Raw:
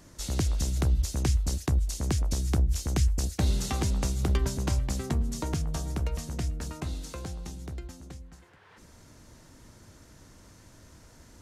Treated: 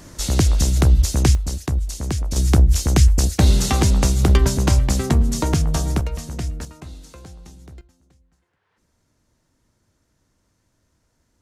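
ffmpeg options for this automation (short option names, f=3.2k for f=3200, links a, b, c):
-af "asetnsamples=n=441:p=0,asendcmd='1.35 volume volume 4dB;2.36 volume volume 11.5dB;6.01 volume volume 5dB;6.65 volume volume -3dB;7.81 volume volume -14dB',volume=11dB"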